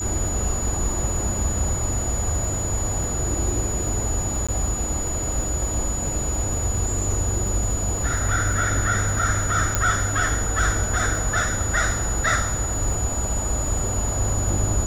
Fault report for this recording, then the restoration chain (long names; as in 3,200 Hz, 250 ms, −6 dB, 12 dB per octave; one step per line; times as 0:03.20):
surface crackle 26 per second −28 dBFS
whistle 6,900 Hz −27 dBFS
0:04.47–0:04.49: drop-out 16 ms
0:09.75: click −5 dBFS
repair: click removal
notch filter 6,900 Hz, Q 30
repair the gap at 0:04.47, 16 ms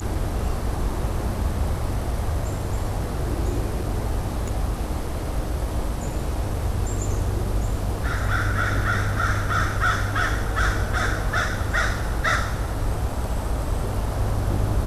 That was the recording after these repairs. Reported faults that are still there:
none of them is left